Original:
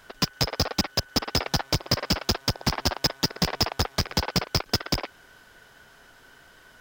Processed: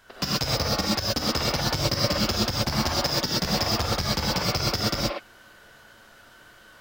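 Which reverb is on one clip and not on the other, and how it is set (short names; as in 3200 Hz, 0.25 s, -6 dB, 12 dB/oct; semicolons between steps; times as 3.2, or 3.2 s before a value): non-linear reverb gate 0.15 s rising, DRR -5.5 dB; gain -4.5 dB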